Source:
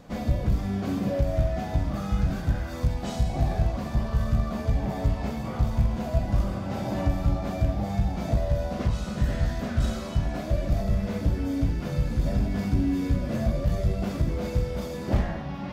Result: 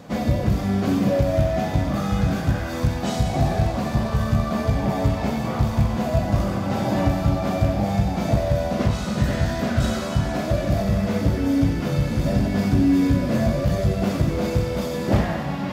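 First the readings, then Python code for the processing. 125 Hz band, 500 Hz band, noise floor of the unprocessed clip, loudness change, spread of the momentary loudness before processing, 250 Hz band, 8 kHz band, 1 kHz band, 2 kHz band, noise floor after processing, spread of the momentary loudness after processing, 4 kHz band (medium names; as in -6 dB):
+5.0 dB, +8.0 dB, -34 dBFS, +5.5 dB, 3 LU, +7.5 dB, no reading, +8.0 dB, +8.5 dB, -27 dBFS, 4 LU, +8.5 dB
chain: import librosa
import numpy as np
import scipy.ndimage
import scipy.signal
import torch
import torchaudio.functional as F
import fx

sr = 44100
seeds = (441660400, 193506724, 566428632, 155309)

p1 = scipy.signal.sosfilt(scipy.signal.butter(2, 89.0, 'highpass', fs=sr, output='sos'), x)
p2 = p1 + fx.echo_thinned(p1, sr, ms=94, feedback_pct=85, hz=370.0, wet_db=-11.5, dry=0)
y = p2 * librosa.db_to_amplitude(7.5)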